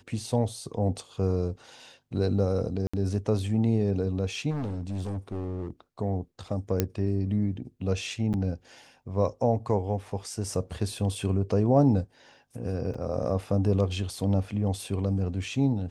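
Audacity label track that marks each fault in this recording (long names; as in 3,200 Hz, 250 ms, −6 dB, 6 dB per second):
2.870000	2.940000	drop-out 65 ms
4.500000	5.700000	clipping −28.5 dBFS
6.800000	6.800000	click −9 dBFS
8.330000	8.340000	drop-out 8.7 ms
12.940000	12.940000	drop-out 4.8 ms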